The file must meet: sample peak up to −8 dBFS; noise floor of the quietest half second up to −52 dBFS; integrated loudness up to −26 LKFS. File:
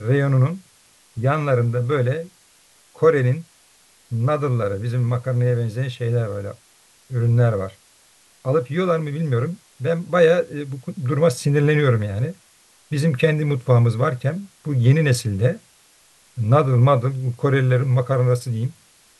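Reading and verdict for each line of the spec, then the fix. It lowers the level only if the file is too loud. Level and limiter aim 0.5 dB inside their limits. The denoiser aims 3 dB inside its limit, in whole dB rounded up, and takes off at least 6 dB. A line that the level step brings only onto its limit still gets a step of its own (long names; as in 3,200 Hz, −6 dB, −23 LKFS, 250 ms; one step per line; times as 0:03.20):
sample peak −3.5 dBFS: out of spec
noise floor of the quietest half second −55 dBFS: in spec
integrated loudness −20.5 LKFS: out of spec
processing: level −6 dB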